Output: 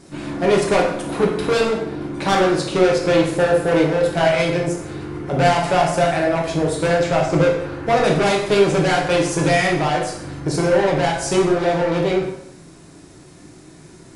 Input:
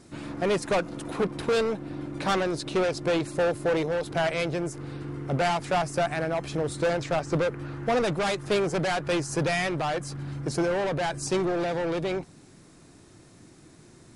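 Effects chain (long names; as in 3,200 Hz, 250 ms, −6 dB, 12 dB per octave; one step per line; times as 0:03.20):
dense smooth reverb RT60 0.78 s, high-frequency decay 0.8×, DRR −1.5 dB
level +5 dB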